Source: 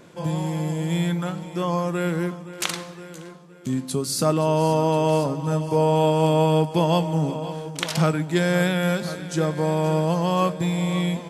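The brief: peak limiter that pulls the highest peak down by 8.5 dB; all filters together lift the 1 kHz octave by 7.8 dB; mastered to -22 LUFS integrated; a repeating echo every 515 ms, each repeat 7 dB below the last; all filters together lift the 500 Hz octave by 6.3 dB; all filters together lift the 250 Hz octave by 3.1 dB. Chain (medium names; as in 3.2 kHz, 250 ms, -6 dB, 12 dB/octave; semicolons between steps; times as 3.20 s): peaking EQ 250 Hz +3.5 dB; peaking EQ 500 Hz +4.5 dB; peaking EQ 1 kHz +7.5 dB; peak limiter -10.5 dBFS; feedback delay 515 ms, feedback 45%, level -7 dB; trim -1.5 dB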